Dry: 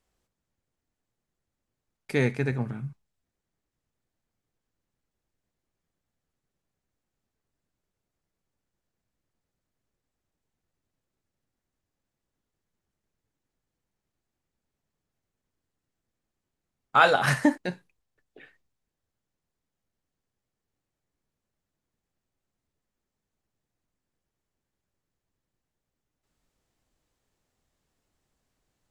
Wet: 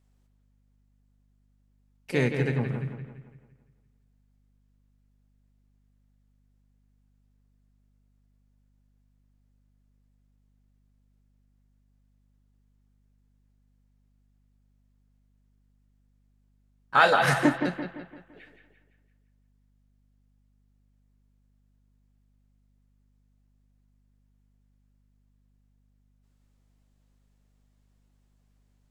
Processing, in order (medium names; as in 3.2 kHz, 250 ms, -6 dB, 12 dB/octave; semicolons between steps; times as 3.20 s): bucket-brigade echo 170 ms, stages 4096, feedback 46%, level -7.5 dB; harmony voices +3 st -10 dB; hum 50 Hz, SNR 30 dB; trim -1 dB